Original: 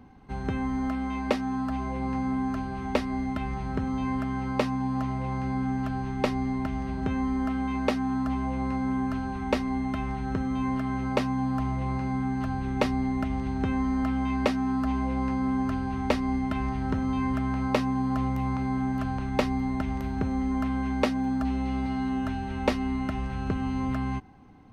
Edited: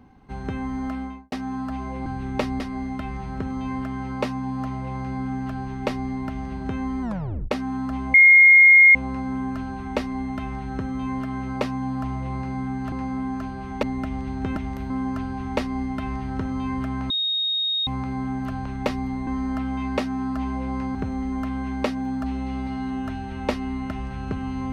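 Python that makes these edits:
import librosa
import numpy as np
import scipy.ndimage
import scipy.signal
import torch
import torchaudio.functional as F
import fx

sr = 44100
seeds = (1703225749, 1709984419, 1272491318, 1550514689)

y = fx.studio_fade_out(x, sr, start_s=0.97, length_s=0.35)
y = fx.edit(y, sr, fx.swap(start_s=2.06, length_s=0.91, other_s=12.48, other_length_s=0.54),
    fx.tape_stop(start_s=7.39, length_s=0.49),
    fx.insert_tone(at_s=8.51, length_s=0.81, hz=2140.0, db=-8.0),
    fx.swap(start_s=13.75, length_s=1.68, other_s=19.8, other_length_s=0.34),
    fx.bleep(start_s=17.63, length_s=0.77, hz=3730.0, db=-21.0), tone=tone)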